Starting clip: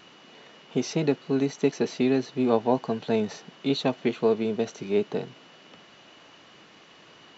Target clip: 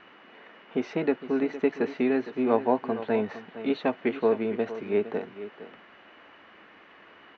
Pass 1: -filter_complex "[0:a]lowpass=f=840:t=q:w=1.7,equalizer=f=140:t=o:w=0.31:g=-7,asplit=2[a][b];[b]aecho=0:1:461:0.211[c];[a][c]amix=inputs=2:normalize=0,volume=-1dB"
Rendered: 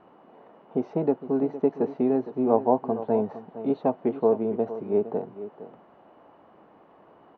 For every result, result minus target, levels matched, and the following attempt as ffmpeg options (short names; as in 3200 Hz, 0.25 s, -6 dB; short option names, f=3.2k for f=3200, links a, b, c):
2000 Hz band -17.5 dB; 125 Hz band +3.0 dB
-filter_complex "[0:a]lowpass=f=1.9k:t=q:w=1.7,equalizer=f=140:t=o:w=0.31:g=-7,asplit=2[a][b];[b]aecho=0:1:461:0.211[c];[a][c]amix=inputs=2:normalize=0,volume=-1dB"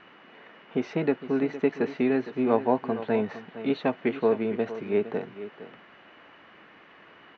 125 Hz band +4.0 dB
-filter_complex "[0:a]lowpass=f=1.9k:t=q:w=1.7,equalizer=f=140:t=o:w=0.31:g=-19,asplit=2[a][b];[b]aecho=0:1:461:0.211[c];[a][c]amix=inputs=2:normalize=0,volume=-1dB"